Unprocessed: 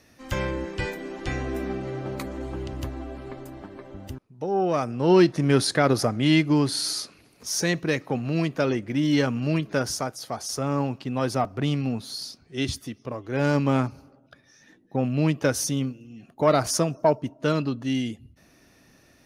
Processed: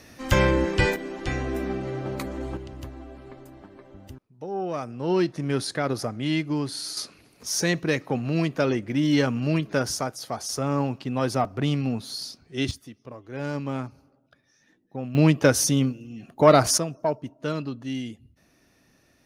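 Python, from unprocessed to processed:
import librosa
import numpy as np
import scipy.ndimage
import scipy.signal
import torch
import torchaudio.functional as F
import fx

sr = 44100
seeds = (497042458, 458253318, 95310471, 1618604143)

y = fx.gain(x, sr, db=fx.steps((0.0, 8.0), (0.96, 1.0), (2.57, -6.0), (6.97, 0.5), (12.71, -8.0), (15.15, 4.5), (16.78, -5.0)))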